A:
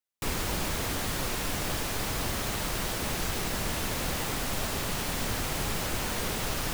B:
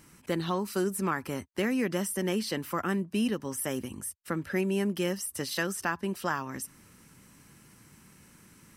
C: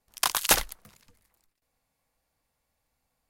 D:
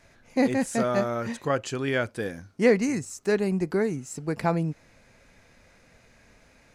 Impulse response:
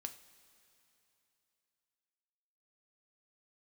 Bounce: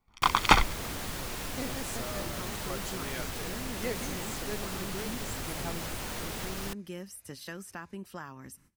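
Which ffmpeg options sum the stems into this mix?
-filter_complex "[0:a]volume=-1dB[link_01];[1:a]agate=range=-19dB:threshold=-50dB:ratio=16:detection=peak,lowshelf=frequency=120:gain=12,adelay=1900,volume=-11dB[link_02];[2:a]lowpass=2700,aecho=1:1:0.9:0.65,dynaudnorm=framelen=200:gausssize=3:maxgain=8dB,volume=0dB[link_03];[3:a]highshelf=frequency=3100:gain=12,adelay=1200,volume=-16.5dB[link_04];[link_01][link_02]amix=inputs=2:normalize=0,acompressor=threshold=-37dB:ratio=2,volume=0dB[link_05];[link_03][link_04][link_05]amix=inputs=3:normalize=0"

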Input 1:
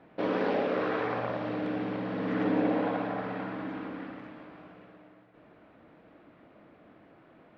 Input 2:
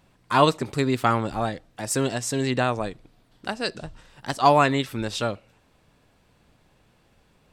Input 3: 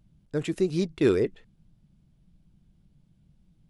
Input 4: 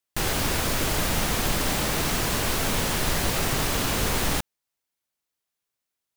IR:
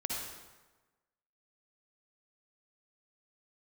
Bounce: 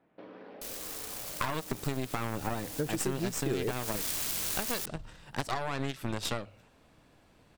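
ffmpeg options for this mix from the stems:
-filter_complex "[0:a]acompressor=threshold=-33dB:ratio=6,volume=-13dB[link_01];[1:a]alimiter=limit=-11.5dB:level=0:latency=1,acompressor=threshold=-23dB:ratio=6,aeval=exprs='0.188*(cos(1*acos(clip(val(0)/0.188,-1,1)))-cos(1*PI/2))+0.0531*(cos(4*acos(clip(val(0)/0.188,-1,1)))-cos(4*PI/2))+0.00841*(cos(7*acos(clip(val(0)/0.188,-1,1)))-cos(7*PI/2))':channel_layout=same,adelay=1100,volume=2dB[link_02];[2:a]adelay=2450,volume=1.5dB[link_03];[3:a]aeval=exprs='(mod(8.91*val(0)+1,2)-1)/8.91':channel_layout=same,highshelf=frequency=3200:gain=11,adelay=450,volume=-11dB,afade=type=in:start_time=3.6:duration=0.51:silence=0.237137[link_04];[link_01][link_02][link_03][link_04]amix=inputs=4:normalize=0,bandreject=frequency=50:width_type=h:width=6,bandreject=frequency=100:width_type=h:width=6,acompressor=threshold=-29dB:ratio=5"

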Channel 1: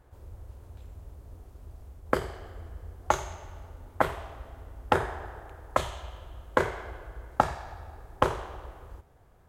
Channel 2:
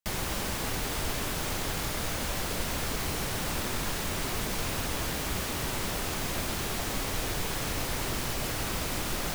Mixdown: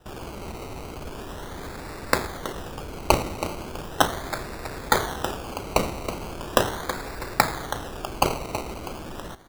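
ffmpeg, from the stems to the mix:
ffmpeg -i stem1.wav -i stem2.wav -filter_complex "[0:a]crystalizer=i=8.5:c=0,volume=-0.5dB,asplit=2[link_01][link_02];[link_02]volume=-10dB[link_03];[1:a]equalizer=frequency=380:width_type=o:width=0.77:gain=6.5,alimiter=level_in=6dB:limit=-24dB:level=0:latency=1,volume=-6dB,volume=2dB,asplit=2[link_04][link_05];[link_05]volume=-19.5dB[link_06];[link_03][link_06]amix=inputs=2:normalize=0,aecho=0:1:324|648|972|1296|1620|1944:1|0.44|0.194|0.0852|0.0375|0.0165[link_07];[link_01][link_04][link_07]amix=inputs=3:normalize=0,acrusher=samples=20:mix=1:aa=0.000001:lfo=1:lforange=12:lforate=0.38" out.wav

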